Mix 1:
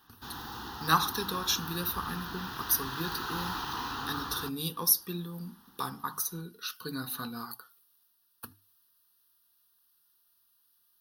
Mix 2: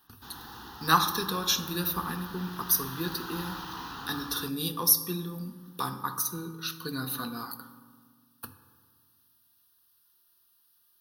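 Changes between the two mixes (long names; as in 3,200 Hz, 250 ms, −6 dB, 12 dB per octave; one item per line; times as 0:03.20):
speech: send on
background −4.0 dB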